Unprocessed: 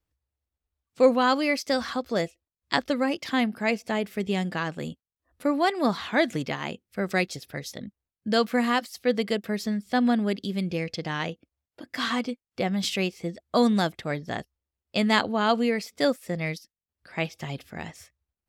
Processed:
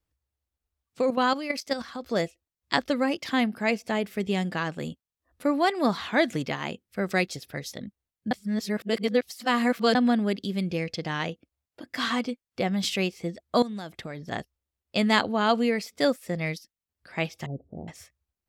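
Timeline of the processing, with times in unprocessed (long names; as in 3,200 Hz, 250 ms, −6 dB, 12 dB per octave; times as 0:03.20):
0:01.01–0:02.02: output level in coarse steps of 11 dB
0:08.31–0:09.95: reverse
0:13.62–0:14.32: downward compressor 16 to 1, threshold −31 dBFS
0:17.46–0:17.88: Butterworth low-pass 650 Hz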